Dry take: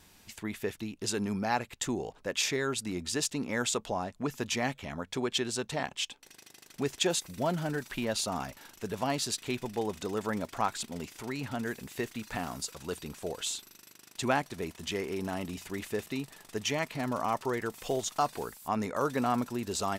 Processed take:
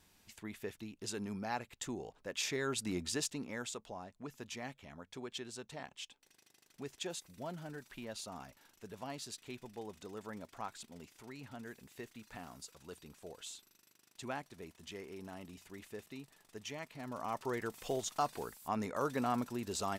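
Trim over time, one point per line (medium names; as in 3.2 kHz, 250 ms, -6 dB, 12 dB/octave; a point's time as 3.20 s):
2.28 s -9 dB
2.94 s -2 dB
3.77 s -13.5 dB
16.95 s -13.5 dB
17.54 s -5.5 dB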